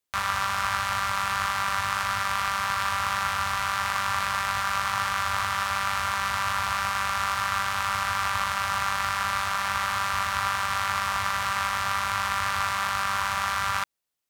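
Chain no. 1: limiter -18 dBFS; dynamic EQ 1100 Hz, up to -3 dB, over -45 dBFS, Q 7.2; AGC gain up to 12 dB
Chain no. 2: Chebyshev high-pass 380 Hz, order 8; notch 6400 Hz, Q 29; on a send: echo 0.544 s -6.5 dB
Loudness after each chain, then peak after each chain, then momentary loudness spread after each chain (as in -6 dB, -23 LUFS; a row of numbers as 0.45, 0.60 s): -19.5, -24.5 LUFS; -6.0, -11.5 dBFS; 0, 0 LU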